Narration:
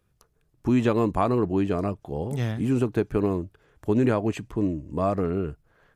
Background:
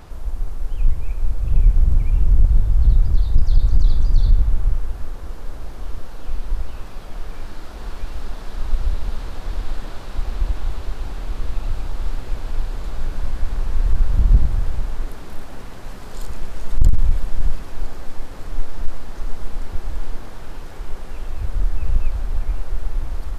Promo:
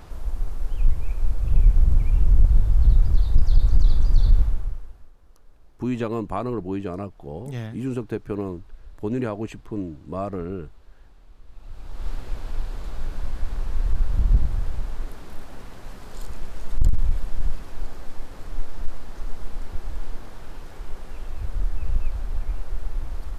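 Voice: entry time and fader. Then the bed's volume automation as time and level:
5.15 s, −4.5 dB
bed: 0:04.41 −2 dB
0:05.14 −23.5 dB
0:11.45 −23.5 dB
0:12.08 −5 dB

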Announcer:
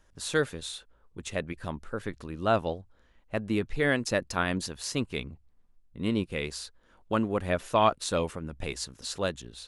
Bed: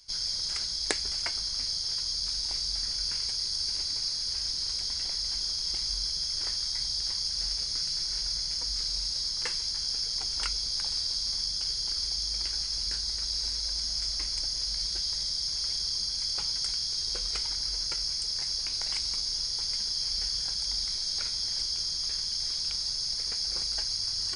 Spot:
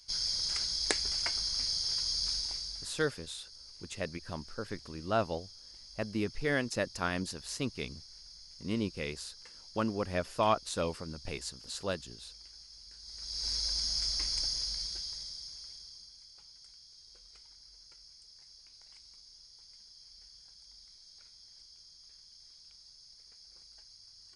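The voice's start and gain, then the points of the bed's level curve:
2.65 s, −5.0 dB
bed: 0:02.32 −1.5 dB
0:03.24 −21 dB
0:12.94 −21 dB
0:13.52 −1.5 dB
0:14.46 −1.5 dB
0:16.30 −24.5 dB

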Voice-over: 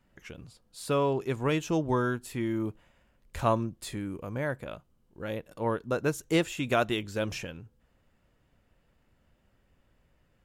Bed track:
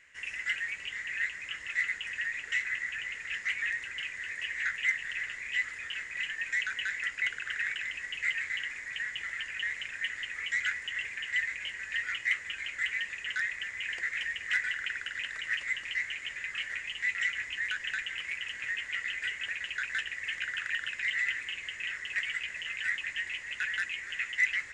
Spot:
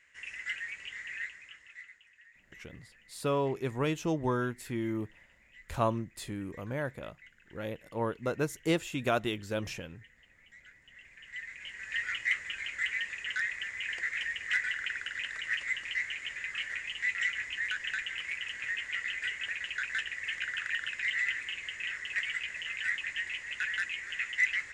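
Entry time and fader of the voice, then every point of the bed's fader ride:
2.35 s, −3.0 dB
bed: 0:01.13 −4.5 dB
0:02.12 −25 dB
0:10.68 −25 dB
0:11.98 −0.5 dB

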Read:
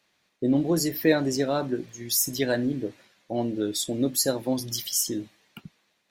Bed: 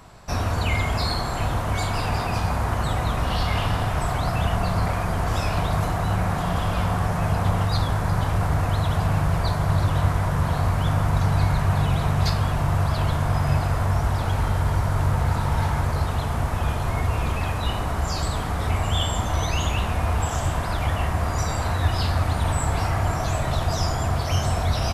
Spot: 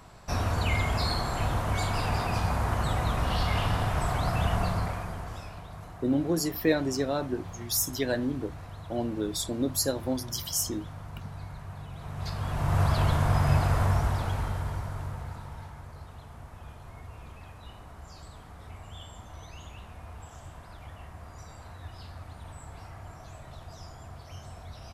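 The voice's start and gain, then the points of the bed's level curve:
5.60 s, −3.5 dB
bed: 0:04.63 −4 dB
0:05.63 −20.5 dB
0:11.92 −20.5 dB
0:12.81 −2 dB
0:13.84 −2 dB
0:15.75 −21.5 dB

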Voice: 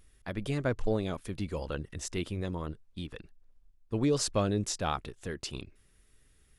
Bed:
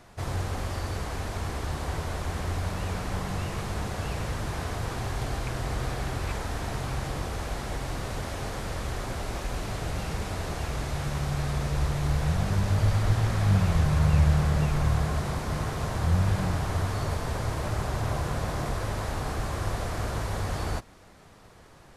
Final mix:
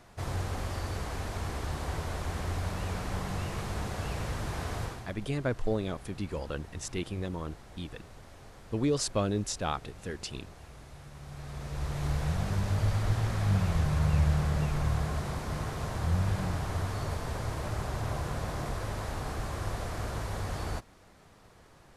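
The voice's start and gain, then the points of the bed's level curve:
4.80 s, −0.5 dB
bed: 0:04.83 −3 dB
0:05.15 −18 dB
0:11.13 −18 dB
0:12.04 −4.5 dB

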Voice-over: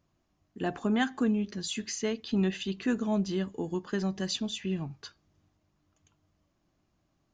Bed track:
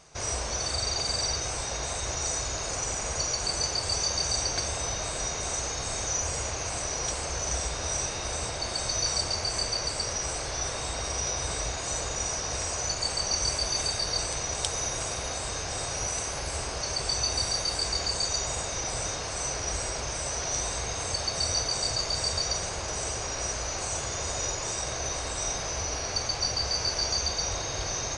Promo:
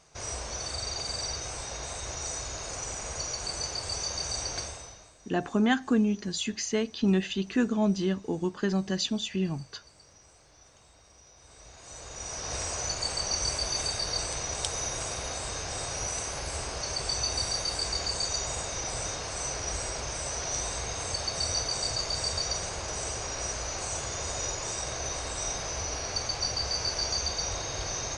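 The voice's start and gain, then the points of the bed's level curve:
4.70 s, +3.0 dB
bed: 0:04.61 −5 dB
0:05.18 −26 dB
0:11.33 −26 dB
0:12.54 −2 dB

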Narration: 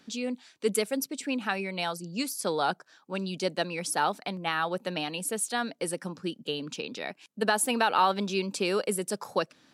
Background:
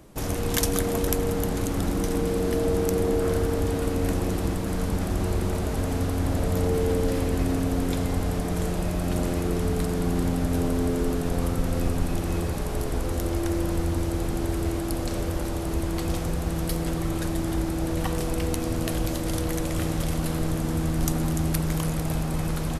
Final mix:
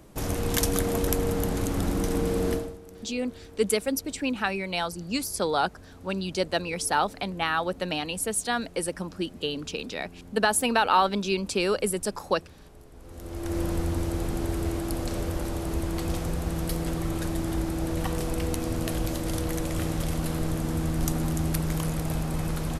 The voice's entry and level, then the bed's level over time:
2.95 s, +2.5 dB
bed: 0:02.53 −1 dB
0:02.79 −22.5 dB
0:12.94 −22.5 dB
0:13.58 −2 dB

